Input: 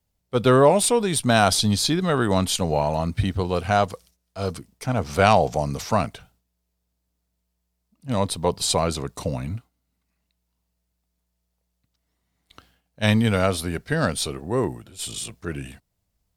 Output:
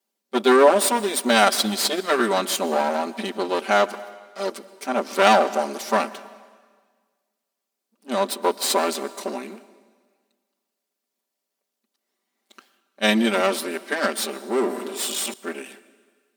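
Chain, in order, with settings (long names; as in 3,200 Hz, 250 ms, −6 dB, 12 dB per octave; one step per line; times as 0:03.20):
lower of the sound and its delayed copy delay 5.1 ms
linear-phase brick-wall high-pass 210 Hz
0:01.35–0:02.22: transient designer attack +4 dB, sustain −6 dB
dense smooth reverb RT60 1.6 s, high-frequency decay 0.95×, pre-delay 105 ms, DRR 17.5 dB
0:14.63–0:15.34: envelope flattener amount 50%
level +1.5 dB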